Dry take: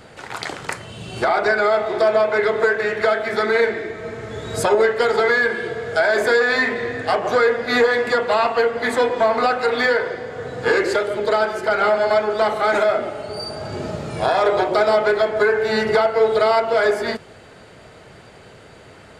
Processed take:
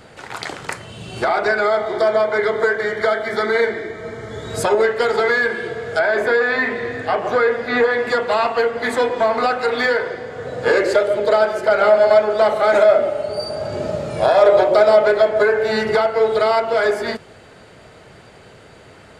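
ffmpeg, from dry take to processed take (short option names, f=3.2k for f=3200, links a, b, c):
-filter_complex "[0:a]asettb=1/sr,asplit=3[a][b][c];[a]atrim=end=1.644[d];[b]atrim=start=1.64:end=4.5,asetpts=PTS-STARTPTS,afade=t=in:d=0.004:c=qsin,afade=t=out:st=2.856:d=0.004:c=qsin,asuperstop=centerf=2600:order=12:qfactor=6.6[e];[c]atrim=start=4.496[f];[d][e]acrossfade=d=0.004:c1=hsin:c2=qsin[g];[g][f]acrossfade=d=0.004:c1=qsin:c2=hsin,asettb=1/sr,asplit=3[h][i][j];[h]atrim=end=5.994[k];[i]atrim=start=5.99:end=8.08,asetpts=PTS-STARTPTS,afade=t=in:d=0.004:c=qsin,afade=t=out:st=2.086:d=0.004:c=qsin,acrossover=split=3400[l][m];[m]acompressor=threshold=-45dB:ratio=4:attack=1:release=60[n];[l][n]amix=inputs=2:normalize=0[o];[j]atrim=start=8.076[p];[k][o]acrossfade=d=0.004:c1=hsin:c2=qsin[q];[q][p]acrossfade=d=0.004:c1=qsin:c2=hsin,asettb=1/sr,asplit=3[r][s][t];[r]atrim=end=10.474[u];[s]atrim=start=10.47:end=15.72,asetpts=PTS-STARTPTS,afade=t=in:d=0.004:c=qsin,afade=t=out:st=5.246:d=0.004:c=qsin,equalizer=f=580:t=o:w=0.27:g=11.5[v];[t]atrim=start=15.716[w];[u][v]acrossfade=d=0.004:c1=hsin:c2=qsin[x];[x][w]acrossfade=d=0.004:c1=qsin:c2=hsin"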